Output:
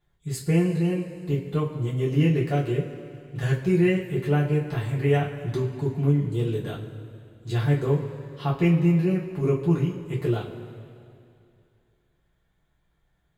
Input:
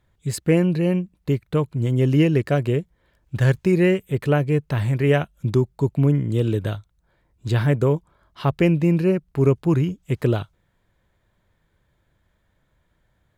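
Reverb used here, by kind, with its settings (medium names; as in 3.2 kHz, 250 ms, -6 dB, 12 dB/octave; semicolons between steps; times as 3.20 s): two-slope reverb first 0.22 s, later 2.5 s, from -18 dB, DRR -6 dB; trim -11.5 dB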